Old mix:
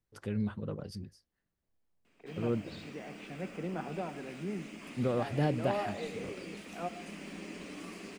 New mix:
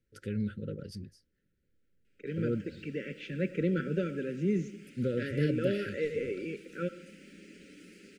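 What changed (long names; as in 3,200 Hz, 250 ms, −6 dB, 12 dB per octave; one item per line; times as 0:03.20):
second voice +9.0 dB
background −8.0 dB
master: add linear-phase brick-wall band-stop 580–1,300 Hz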